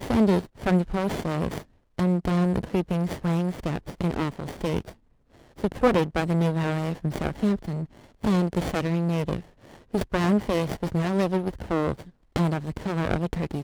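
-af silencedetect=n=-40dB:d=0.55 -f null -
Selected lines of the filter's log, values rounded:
silence_start: 4.92
silence_end: 5.58 | silence_duration: 0.66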